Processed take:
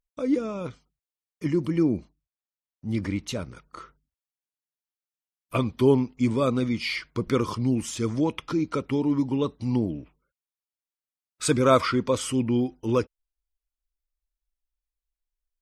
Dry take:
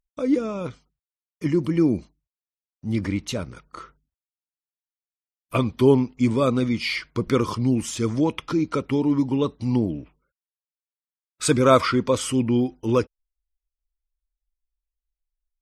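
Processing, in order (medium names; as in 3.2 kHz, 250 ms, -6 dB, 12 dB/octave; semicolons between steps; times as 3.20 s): 1.83–2.89 s: treble shelf 3.8 kHz -8 dB; trim -3 dB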